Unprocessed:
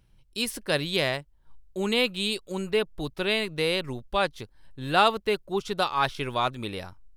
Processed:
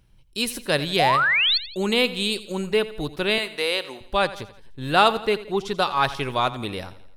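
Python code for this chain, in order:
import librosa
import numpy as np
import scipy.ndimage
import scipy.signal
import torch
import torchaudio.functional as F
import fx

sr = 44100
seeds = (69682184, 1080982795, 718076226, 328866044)

y = fx.spec_paint(x, sr, seeds[0], shape='rise', start_s=0.99, length_s=0.59, low_hz=670.0, high_hz=4600.0, level_db=-23.0)
y = fx.highpass(y, sr, hz=490.0, slope=12, at=(3.38, 4.01))
y = fx.high_shelf(y, sr, hz=10000.0, db=-6.0, at=(5.22, 5.85))
y = fx.echo_feedback(y, sr, ms=85, feedback_pct=50, wet_db=-16.0)
y = F.gain(torch.from_numpy(y), 3.5).numpy()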